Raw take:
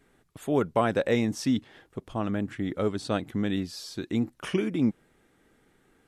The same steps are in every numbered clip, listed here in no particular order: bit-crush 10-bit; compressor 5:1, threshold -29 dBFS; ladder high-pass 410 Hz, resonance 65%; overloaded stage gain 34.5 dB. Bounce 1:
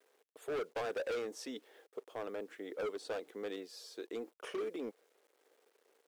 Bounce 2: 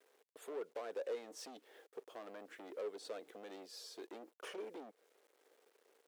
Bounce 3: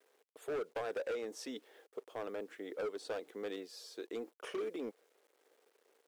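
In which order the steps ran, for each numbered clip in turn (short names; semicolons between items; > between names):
bit-crush > ladder high-pass > overloaded stage > compressor; bit-crush > compressor > overloaded stage > ladder high-pass; bit-crush > ladder high-pass > compressor > overloaded stage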